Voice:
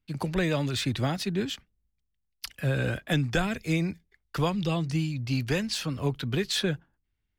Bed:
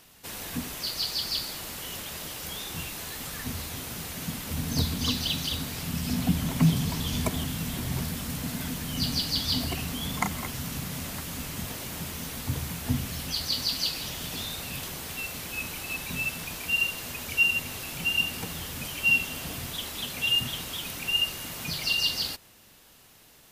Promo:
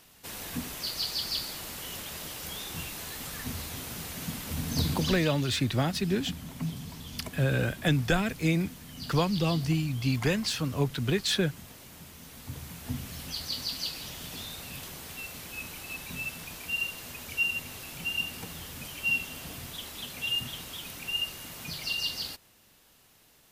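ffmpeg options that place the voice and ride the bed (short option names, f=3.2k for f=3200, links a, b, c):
-filter_complex "[0:a]adelay=4750,volume=0.5dB[a];[1:a]volume=5dB,afade=t=out:st=4.93:d=0.37:silence=0.298538,afade=t=in:st=12.19:d=1.1:silence=0.446684[b];[a][b]amix=inputs=2:normalize=0"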